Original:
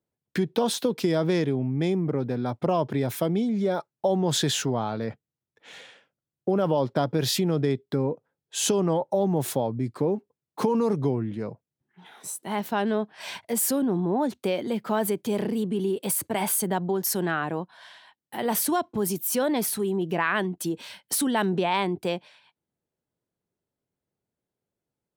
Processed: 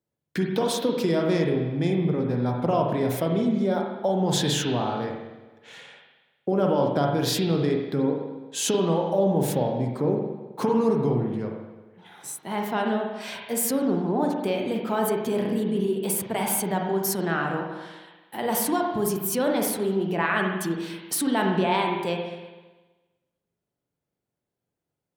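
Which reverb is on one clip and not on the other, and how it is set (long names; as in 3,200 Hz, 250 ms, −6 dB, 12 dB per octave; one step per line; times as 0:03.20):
spring reverb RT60 1.2 s, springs 41/48 ms, chirp 55 ms, DRR 1 dB
level −1 dB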